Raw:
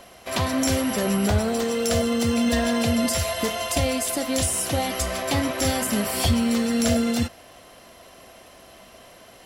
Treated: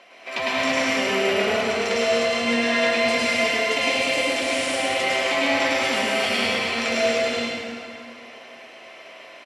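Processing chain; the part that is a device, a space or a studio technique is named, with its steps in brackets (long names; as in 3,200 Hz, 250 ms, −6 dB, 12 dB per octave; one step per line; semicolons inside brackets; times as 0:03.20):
station announcement (band-pass filter 350–4,900 Hz; parametric band 2,300 Hz +10 dB 0.55 octaves; loudspeakers that aren't time-aligned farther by 36 metres −3 dB, 63 metres −10 dB; convolution reverb RT60 2.3 s, pre-delay 95 ms, DRR −5.5 dB)
level −4.5 dB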